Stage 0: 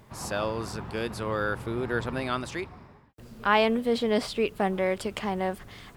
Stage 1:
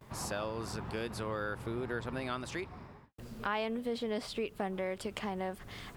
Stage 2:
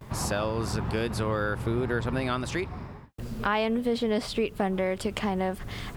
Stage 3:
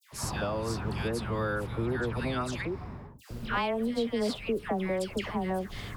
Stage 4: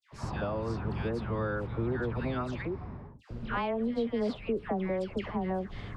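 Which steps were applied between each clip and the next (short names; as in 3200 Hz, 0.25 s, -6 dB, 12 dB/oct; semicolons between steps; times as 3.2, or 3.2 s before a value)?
gate with hold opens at -45 dBFS; compressor 2.5:1, threshold -37 dBFS, peak gain reduction 13.5 dB
low shelf 180 Hz +6.5 dB; gain +7.5 dB
dispersion lows, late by 0.12 s, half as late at 1400 Hz; gain -3 dB
tape spacing loss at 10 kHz 24 dB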